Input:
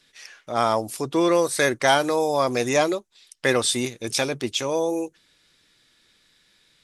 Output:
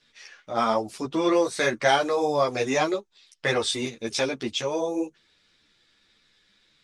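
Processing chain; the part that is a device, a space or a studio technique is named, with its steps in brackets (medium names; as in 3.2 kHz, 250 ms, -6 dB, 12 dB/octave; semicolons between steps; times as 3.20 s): string-machine ensemble chorus (three-phase chorus; low-pass 6 kHz 12 dB/octave); trim +1 dB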